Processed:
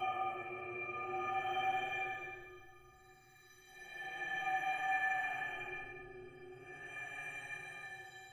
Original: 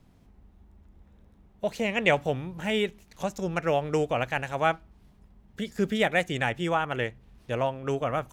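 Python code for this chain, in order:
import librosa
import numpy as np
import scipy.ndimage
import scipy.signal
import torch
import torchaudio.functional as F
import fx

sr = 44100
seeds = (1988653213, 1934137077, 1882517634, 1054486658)

y = fx.paulstretch(x, sr, seeds[0], factor=26.0, window_s=0.05, from_s=4.16)
y = fx.stiff_resonator(y, sr, f0_hz=360.0, decay_s=0.34, stiffness=0.03)
y = y * 10.0 ** (3.5 / 20.0)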